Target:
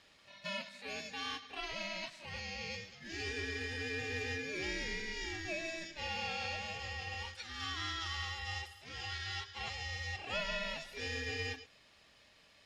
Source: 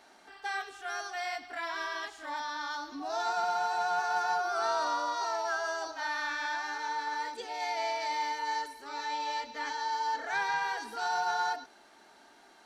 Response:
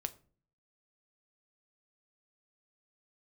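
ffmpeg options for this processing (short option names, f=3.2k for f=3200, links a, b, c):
-af "highpass=850,equalizer=f=2.9k:w=1.1:g=12,aeval=exprs='val(0)*sin(2*PI*980*n/s)':c=same,volume=-6dB" -ar 48000 -c:a libopus -b:a 64k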